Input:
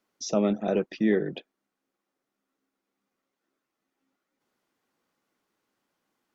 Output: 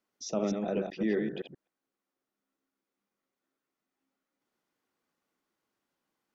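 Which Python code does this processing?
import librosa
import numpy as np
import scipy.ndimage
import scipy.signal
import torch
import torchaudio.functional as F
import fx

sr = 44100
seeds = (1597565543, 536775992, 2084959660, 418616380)

y = fx.reverse_delay(x, sr, ms=129, wet_db=-4.5)
y = F.gain(torch.from_numpy(y), -6.5).numpy()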